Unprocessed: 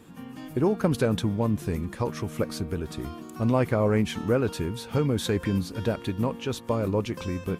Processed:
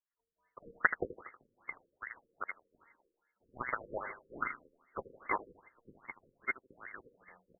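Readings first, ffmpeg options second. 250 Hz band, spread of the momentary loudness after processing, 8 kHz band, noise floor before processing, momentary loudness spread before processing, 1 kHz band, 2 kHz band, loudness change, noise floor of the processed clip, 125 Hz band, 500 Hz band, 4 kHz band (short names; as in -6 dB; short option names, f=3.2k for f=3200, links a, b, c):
-27.5 dB, 20 LU, under -40 dB, -43 dBFS, 9 LU, -6.5 dB, +1.0 dB, -12.5 dB, under -85 dBFS, -34.0 dB, -20.5 dB, under -40 dB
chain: -filter_complex "[0:a]highpass=f=73:w=0.5412,highpass=f=73:w=1.3066,agate=range=-33dB:threshold=-28dB:ratio=3:detection=peak,equalizer=f=410:w=6.1:g=13.5,acrossover=split=120[a][b];[a]alimiter=level_in=9dB:limit=-24dB:level=0:latency=1,volume=-9dB[c];[c][b]amix=inputs=2:normalize=0,lowpass=f=2.4k:t=q:w=0.5098,lowpass=f=2.4k:t=q:w=0.6013,lowpass=f=2.4k:t=q:w=0.9,lowpass=f=2.4k:t=q:w=2.563,afreqshift=-2800,aeval=exprs='0.501*(cos(1*acos(clip(val(0)/0.501,-1,1)))-cos(1*PI/2))+0.178*(cos(3*acos(clip(val(0)/0.501,-1,1)))-cos(3*PI/2))':c=same,aecho=1:1:79|158|237|316:0.266|0.104|0.0405|0.0158,afftfilt=real='re*lt(b*sr/1024,520*pow(2200/520,0.5+0.5*sin(2*PI*2.5*pts/sr)))':imag='im*lt(b*sr/1024,520*pow(2200/520,0.5+0.5*sin(2*PI*2.5*pts/sr)))':win_size=1024:overlap=0.75,volume=14dB"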